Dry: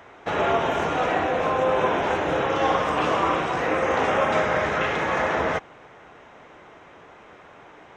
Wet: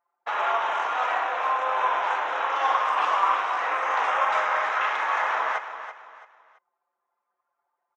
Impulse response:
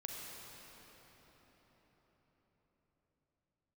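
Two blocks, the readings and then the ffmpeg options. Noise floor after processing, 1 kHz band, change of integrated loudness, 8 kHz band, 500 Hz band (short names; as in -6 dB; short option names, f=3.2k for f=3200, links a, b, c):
-81 dBFS, +1.0 dB, -1.5 dB, n/a, -10.0 dB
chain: -af "anlmdn=25.1,highpass=f=1k:t=q:w=2.1,aecho=1:1:333|666|999:0.282|0.0902|0.0289,volume=-3.5dB"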